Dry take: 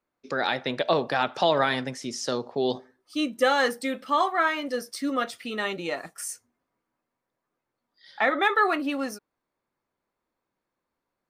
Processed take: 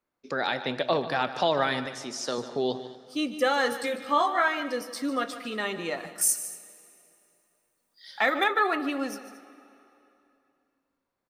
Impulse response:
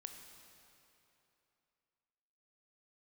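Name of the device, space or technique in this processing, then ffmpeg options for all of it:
compressed reverb return: -filter_complex "[0:a]asettb=1/sr,asplit=3[s0][s1][s2];[s0]atrim=end=1.864[s3];[s1]atrim=start=1.86:end=2.38,asetpts=PTS-STARTPTS,afade=t=in:d=0.004:c=qsin,afade=t=out:st=0.516:d=0.004:c=qsin,highpass=f=300:p=1[s4];[s2]atrim=start=2.376[s5];[s3][s4]acrossfade=d=0.004:c1=hsin:c2=qsin[s6];[s6][s5]acrossfade=d=0.004:c1=qsin:c2=hsin,asplit=2[s7][s8];[1:a]atrim=start_sample=2205[s9];[s8][s9]afir=irnorm=-1:irlink=0,acompressor=threshold=0.0316:ratio=6,volume=0.708[s10];[s7][s10]amix=inputs=2:normalize=0,asettb=1/sr,asplit=3[s11][s12][s13];[s11]atrim=end=3.704[s14];[s12]atrim=start=3.7:end=4.48,asetpts=PTS-STARTPTS,afade=t=in:d=0.004:c=qsin,afade=t=out:st=0.776:d=0.004:c=qsin,asplit=2[s15][s16];[s16]adelay=17,volume=0.708[s17];[s15][s17]amix=inputs=2:normalize=0,atrim=end_sample=34398[s18];[s13]atrim=start=4.476[s19];[s14][s18]acrossfade=d=0.004:c1=hsin:c2=qsin[s20];[s20][s19]acrossfade=d=0.004:c1=qsin:c2=hsin,asettb=1/sr,asplit=3[s21][s22][s23];[s21]atrim=end=6.214[s24];[s22]atrim=start=6.21:end=8.44,asetpts=PTS-STARTPTS,afade=t=in:d=0.004:c=qsin,afade=t=out:st=2.226:d=0.004:c=qsin,aemphasis=mode=production:type=75kf[s25];[s23]atrim=start=8.436[s26];[s24][s25]acrossfade=d=0.004:c1=hsin:c2=qsin[s27];[s27][s26]acrossfade=d=0.004:c1=qsin:c2=hsin,aecho=1:1:149|228:0.211|0.119,volume=0.631"

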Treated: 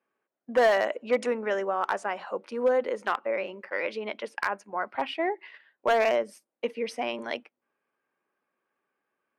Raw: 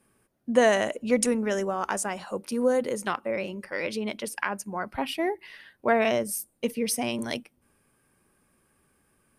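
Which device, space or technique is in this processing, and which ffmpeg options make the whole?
walkie-talkie: -af "highpass=450,lowpass=2500,asoftclip=type=hard:threshold=0.119,agate=range=0.282:threshold=0.00447:ratio=16:detection=peak,volume=1.33"

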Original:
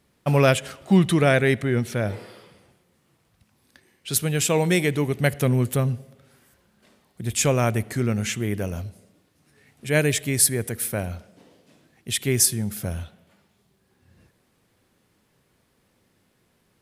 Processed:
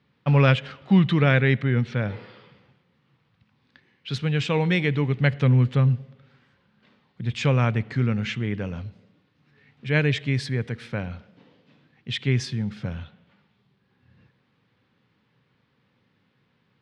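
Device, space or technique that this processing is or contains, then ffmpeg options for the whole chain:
guitar cabinet: -af "highpass=100,equalizer=f=130:t=q:w=4:g=6,equalizer=f=360:t=q:w=4:g=-7,equalizer=f=650:t=q:w=4:g=-9,lowpass=f=4000:w=0.5412,lowpass=f=4000:w=1.3066"

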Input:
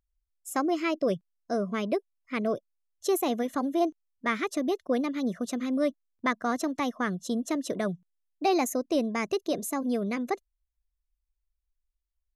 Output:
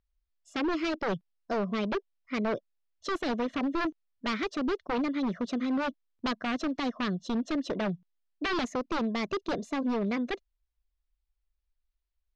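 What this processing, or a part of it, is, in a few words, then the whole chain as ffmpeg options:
synthesiser wavefolder: -af "aeval=exprs='0.0562*(abs(mod(val(0)/0.0562+3,4)-2)-1)':c=same,lowpass=f=4900:w=0.5412,lowpass=f=4900:w=1.3066,volume=1.12"

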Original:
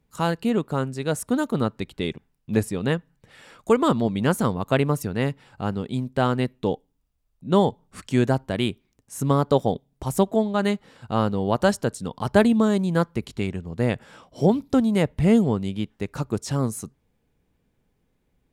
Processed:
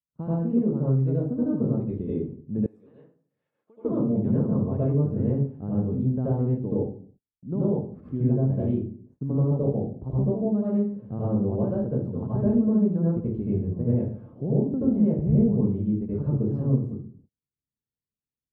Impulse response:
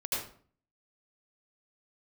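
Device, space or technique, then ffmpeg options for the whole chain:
television next door: -filter_complex "[0:a]acompressor=threshold=0.0794:ratio=4,lowpass=350[s0];[1:a]atrim=start_sample=2205[s1];[s0][s1]afir=irnorm=-1:irlink=0,agate=range=0.0251:threshold=0.00224:ratio=16:detection=peak,highpass=48,asettb=1/sr,asplit=3[s2][s3][s4];[s2]atrim=end=2.664[s5];[s3]atrim=start=2.66:end=3.85,asetpts=PTS-STARTPTS,afade=t=in:d=0.004:c=qsin,afade=t=out:st=1.186:d=0.004:c=qsin,aderivative[s6];[s4]atrim=start=3.846[s7];[s5][s6]acrossfade=d=0.004:c1=hsin:c2=qsin[s8];[s8][s7]acrossfade=d=0.004:c1=qsin:c2=hsin"

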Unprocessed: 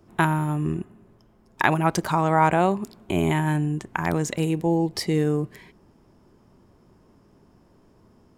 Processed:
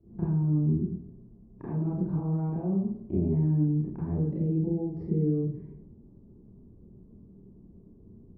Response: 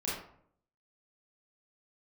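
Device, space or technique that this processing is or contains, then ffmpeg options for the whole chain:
television next door: -filter_complex "[0:a]acompressor=threshold=0.0501:ratio=5,lowpass=260[s0];[1:a]atrim=start_sample=2205[s1];[s0][s1]afir=irnorm=-1:irlink=0"

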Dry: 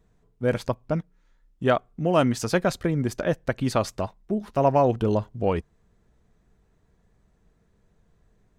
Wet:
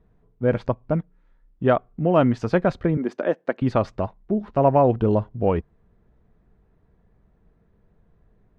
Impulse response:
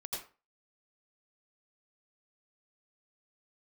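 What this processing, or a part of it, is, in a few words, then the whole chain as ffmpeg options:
phone in a pocket: -filter_complex "[0:a]asettb=1/sr,asplit=3[s0][s1][s2];[s0]atrim=end=2.974[s3];[s1]atrim=start=2.97:end=3.62,asetpts=PTS-STARTPTS,afade=t=in:d=0.004:c=qsin,afade=t=out:st=0.646:d=0.004:c=qsin,highpass=f=240:w=0.5412,highpass=f=240:w=1.3066[s4];[s2]atrim=start=3.616[s5];[s3][s4]acrossfade=d=0.004:c1=hsin:c2=qsin[s6];[s6][s5]acrossfade=d=0.004:c1=qsin:c2=hsin,lowpass=3500,highshelf=f=2100:g=-10,volume=1.5"

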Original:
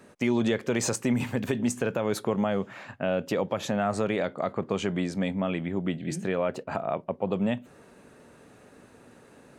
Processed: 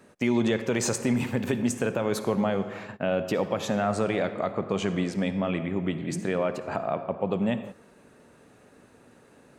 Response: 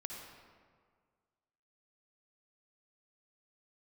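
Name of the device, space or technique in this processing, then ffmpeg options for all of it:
keyed gated reverb: -filter_complex "[0:a]asplit=3[s0][s1][s2];[1:a]atrim=start_sample=2205[s3];[s1][s3]afir=irnorm=-1:irlink=0[s4];[s2]apad=whole_len=422688[s5];[s4][s5]sidechaingate=range=0.0891:threshold=0.00631:ratio=16:detection=peak,volume=0.75[s6];[s0][s6]amix=inputs=2:normalize=0,volume=0.75"

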